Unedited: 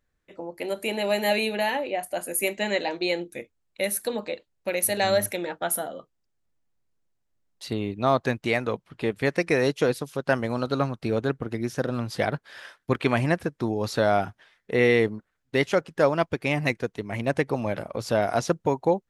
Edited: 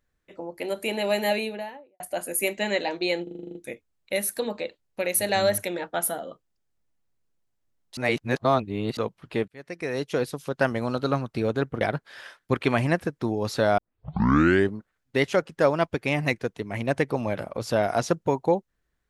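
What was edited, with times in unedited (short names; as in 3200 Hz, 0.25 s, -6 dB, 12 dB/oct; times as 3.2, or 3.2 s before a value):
1.15–2 studio fade out
3.23 stutter 0.04 s, 9 plays
7.65–8.65 reverse
9.16–10.14 fade in
11.49–12.2 cut
14.17 tape start 0.97 s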